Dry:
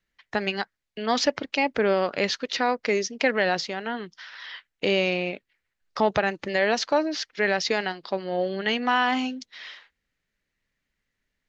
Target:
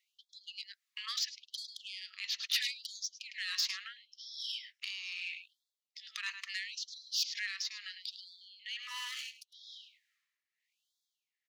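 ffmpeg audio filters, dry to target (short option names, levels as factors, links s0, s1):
-filter_complex "[0:a]asettb=1/sr,asplit=3[s0][s1][s2];[s0]atrim=end=2.154[s3];[s1]atrim=start=2.15:end=2.72,asetpts=PTS-STARTPTS,afade=t=in:d=0.004:c=qsin,afade=t=out:st=0.566:d=0.004:c=qsin,adynamicequalizer=threshold=0.00794:dfrequency=2900:dqfactor=0.92:tfrequency=2900:tqfactor=0.92:attack=5:release=100:ratio=0.375:range=3.5:mode=boostabove:tftype=bell[s4];[s2]atrim=start=2.716[s5];[s3][s4]acrossfade=d=0.004:c1=hsin:c2=qsin[s6];[s6][s5]acrossfade=d=0.004:c1=qsin:c2=hsin,acrossover=split=160|3000[s7][s8][s9];[s8]acompressor=threshold=0.00891:ratio=4[s10];[s7][s10][s9]amix=inputs=3:normalize=0,asettb=1/sr,asplit=3[s11][s12][s13];[s11]atrim=end=4.004[s14];[s12]atrim=start=4:end=5.13,asetpts=PTS-STARTPTS,afade=t=in:d=0.004:c=qsin,afade=t=out:st=1.126:d=0.004:c=qsin,equalizer=f=5400:t=o:w=0.22:g=12.5[s15];[s13]atrim=start=5.126[s16];[s14][s15]acrossfade=d=0.004:c1=hsin:c2=qsin[s17];[s17][s16]acrossfade=d=0.004:c1=qsin:c2=hsin,asettb=1/sr,asplit=3[s18][s19][s20];[s18]atrim=end=8.794[s21];[s19]atrim=start=8.79:end=9.46,asetpts=PTS-STARTPTS,afade=t=in:d=0.004:c=qsin,afade=t=out:st=0.666:d=0.004:c=qsin,aeval=exprs='max(val(0),0)':c=same[s22];[s20]atrim=start=9.456[s23];[s21][s22]acrossfade=d=0.004:c1=hsin:c2=qsin[s24];[s24][s23]acrossfade=d=0.004:c1=qsin:c2=hsin,asplit=2[s25][s26];[s26]adelay=105,volume=0.282,highshelf=f=4000:g=-2.36[s27];[s25][s27]amix=inputs=2:normalize=0,tremolo=f=1.1:d=0.79,asoftclip=type=tanh:threshold=0.0376,bandreject=f=1500:w=7.1,afftfilt=real='re*gte(b*sr/1024,940*pow(3300/940,0.5+0.5*sin(2*PI*0.75*pts/sr)))':imag='im*gte(b*sr/1024,940*pow(3300/940,0.5+0.5*sin(2*PI*0.75*pts/sr)))':win_size=1024:overlap=0.75,volume=1.58"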